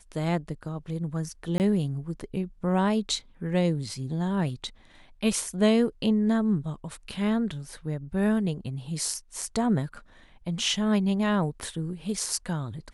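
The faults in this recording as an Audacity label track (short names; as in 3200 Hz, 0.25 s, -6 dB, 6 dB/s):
1.580000	1.600000	gap 19 ms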